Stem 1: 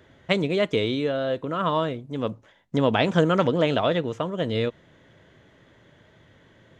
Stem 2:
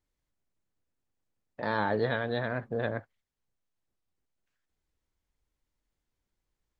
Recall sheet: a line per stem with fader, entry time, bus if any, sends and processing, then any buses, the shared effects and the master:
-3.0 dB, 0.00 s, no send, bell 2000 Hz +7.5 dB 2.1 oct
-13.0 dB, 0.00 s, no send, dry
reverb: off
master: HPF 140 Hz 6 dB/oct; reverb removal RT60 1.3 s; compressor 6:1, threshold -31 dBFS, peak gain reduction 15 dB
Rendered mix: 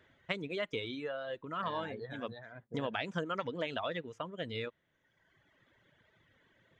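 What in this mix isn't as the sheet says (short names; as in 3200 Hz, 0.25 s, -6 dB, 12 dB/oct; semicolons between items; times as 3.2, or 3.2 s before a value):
stem 1 -3.0 dB -> -13.5 dB; master: missing HPF 140 Hz 6 dB/oct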